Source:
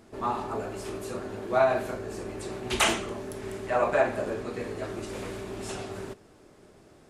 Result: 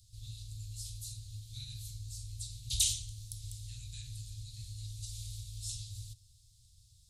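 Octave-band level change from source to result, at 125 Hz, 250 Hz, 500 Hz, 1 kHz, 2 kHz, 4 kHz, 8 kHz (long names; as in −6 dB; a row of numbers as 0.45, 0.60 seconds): 0.0 dB, below −25 dB, below −40 dB, below −40 dB, −27.5 dB, −4.0 dB, +1.5 dB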